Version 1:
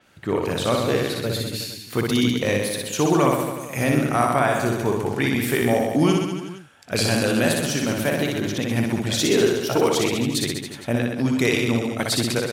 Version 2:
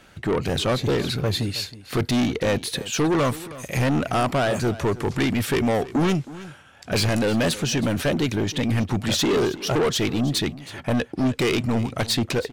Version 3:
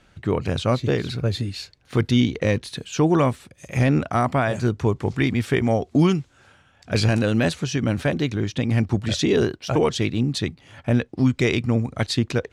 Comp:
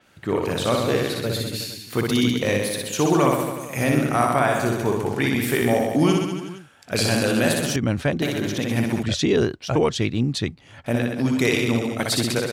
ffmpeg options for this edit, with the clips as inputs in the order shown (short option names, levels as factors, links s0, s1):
-filter_complex "[2:a]asplit=2[s0][s1];[0:a]asplit=3[s2][s3][s4];[s2]atrim=end=7.762[s5];[s0]atrim=start=7.758:end=8.222[s6];[s3]atrim=start=8.218:end=9.032[s7];[s1]atrim=start=9.028:end=10.862[s8];[s4]atrim=start=10.858[s9];[s5][s6]acrossfade=d=0.004:c1=hsin:c2=hsin[s10];[s10][s7]acrossfade=d=0.004:c1=hsin:c2=hsin[s11];[s11][s8]acrossfade=d=0.004:c1=hsin:c2=hsin[s12];[s12][s9]acrossfade=d=0.004:c1=hsin:c2=hsin"